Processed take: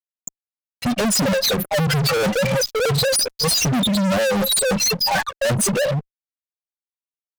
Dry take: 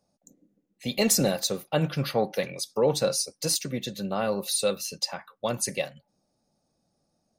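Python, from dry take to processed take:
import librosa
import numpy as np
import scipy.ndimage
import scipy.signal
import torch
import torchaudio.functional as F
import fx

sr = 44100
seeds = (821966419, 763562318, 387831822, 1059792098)

y = fx.spec_expand(x, sr, power=3.8)
y = fx.rider(y, sr, range_db=4, speed_s=0.5)
y = fx.granulator(y, sr, seeds[0], grain_ms=210.0, per_s=6.5, spray_ms=20.0, spread_st=0)
y = fx.fuzz(y, sr, gain_db=52.0, gate_db=-57.0)
y = fx.peak_eq(y, sr, hz=370.0, db=-3.5, octaves=0.48)
y = y * librosa.db_to_amplitude(-4.0)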